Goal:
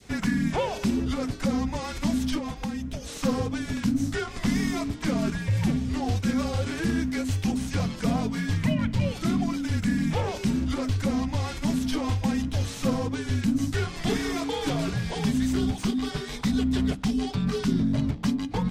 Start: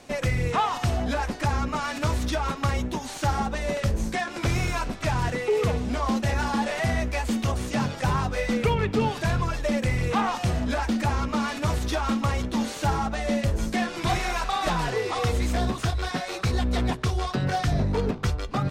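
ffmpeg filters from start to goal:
-filter_complex "[0:a]adynamicequalizer=threshold=0.00794:dfrequency=1400:dqfactor=0.71:tfrequency=1400:tqfactor=0.71:attack=5:release=100:ratio=0.375:range=3:mode=cutabove:tftype=bell,asplit=3[s0][s1][s2];[s0]afade=t=out:st=2.38:d=0.02[s3];[s1]acompressor=threshold=0.0316:ratio=3,afade=t=in:st=2.38:d=0.02,afade=t=out:st=3.13:d=0.02[s4];[s2]afade=t=in:st=3.13:d=0.02[s5];[s3][s4][s5]amix=inputs=3:normalize=0,afreqshift=-320"

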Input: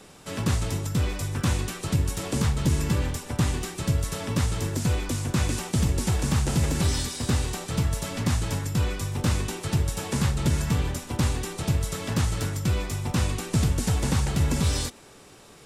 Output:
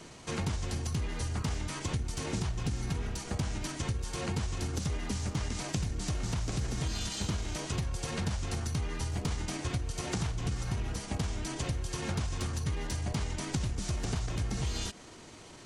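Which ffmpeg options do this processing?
-af "asetrate=36028,aresample=44100,atempo=1.22405,acompressor=threshold=0.0316:ratio=6"

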